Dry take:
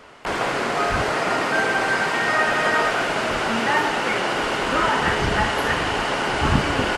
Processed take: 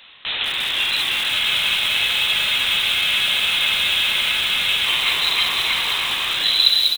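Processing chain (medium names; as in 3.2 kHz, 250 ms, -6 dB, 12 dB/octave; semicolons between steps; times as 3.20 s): tape stop on the ending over 0.70 s; on a send: delay 326 ms -8 dB; on the sum: frequency inversion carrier 4 kHz; spectral freeze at 1.32 s, 3.54 s; bit-crushed delay 192 ms, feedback 55%, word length 4-bit, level -6 dB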